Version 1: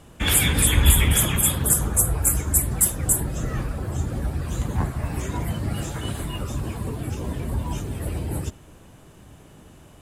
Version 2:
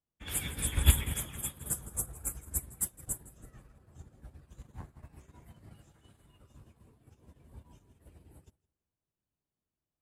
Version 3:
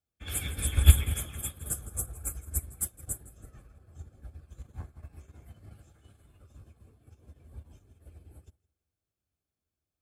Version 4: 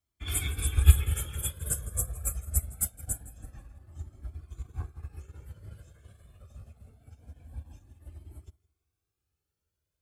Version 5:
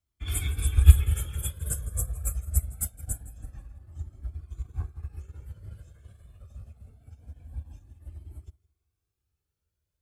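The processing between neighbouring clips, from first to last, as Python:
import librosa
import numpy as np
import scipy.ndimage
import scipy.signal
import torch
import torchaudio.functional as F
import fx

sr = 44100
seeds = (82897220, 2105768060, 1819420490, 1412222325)

y1 = fx.echo_feedback(x, sr, ms=164, feedback_pct=38, wet_db=-10.0)
y1 = fx.upward_expand(y1, sr, threshold_db=-37.0, expansion=2.5)
y1 = y1 * librosa.db_to_amplitude(-5.5)
y2 = fx.low_shelf_res(y1, sr, hz=110.0, db=8.0, q=1.5)
y2 = fx.notch_comb(y2, sr, f0_hz=950.0)
y2 = y2 * librosa.db_to_amplitude(1.5)
y3 = fx.rider(y2, sr, range_db=3, speed_s=0.5)
y3 = fx.comb_cascade(y3, sr, direction='rising', hz=0.24)
y3 = y3 * librosa.db_to_amplitude(4.0)
y4 = fx.low_shelf(y3, sr, hz=120.0, db=8.0)
y4 = y4 * librosa.db_to_amplitude(-2.0)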